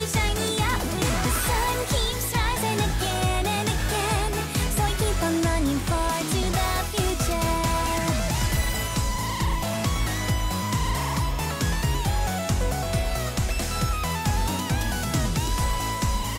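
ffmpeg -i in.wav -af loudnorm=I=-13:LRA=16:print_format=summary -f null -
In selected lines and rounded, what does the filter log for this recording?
Input Integrated:    -25.2 LUFS
Input True Peak:     -12.3 dBTP
Input LRA:             1.9 LU
Input Threshold:     -35.2 LUFS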